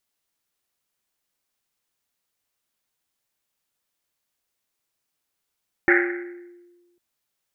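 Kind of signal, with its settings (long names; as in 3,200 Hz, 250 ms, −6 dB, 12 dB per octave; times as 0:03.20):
drum after Risset, pitch 350 Hz, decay 1.42 s, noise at 1,800 Hz, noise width 680 Hz, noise 50%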